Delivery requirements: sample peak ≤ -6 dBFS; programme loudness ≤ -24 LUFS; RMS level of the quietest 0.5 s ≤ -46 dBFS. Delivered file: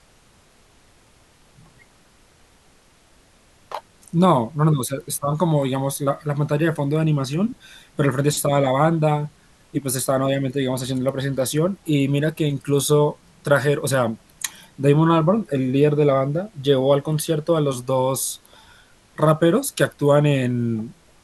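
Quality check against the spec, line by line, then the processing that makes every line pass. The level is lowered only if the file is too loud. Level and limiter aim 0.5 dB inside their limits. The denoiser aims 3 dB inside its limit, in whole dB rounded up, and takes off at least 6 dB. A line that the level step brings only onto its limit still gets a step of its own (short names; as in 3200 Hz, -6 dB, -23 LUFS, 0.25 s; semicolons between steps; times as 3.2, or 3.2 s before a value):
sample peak -4.0 dBFS: fail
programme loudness -20.5 LUFS: fail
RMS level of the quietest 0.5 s -55 dBFS: OK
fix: gain -4 dB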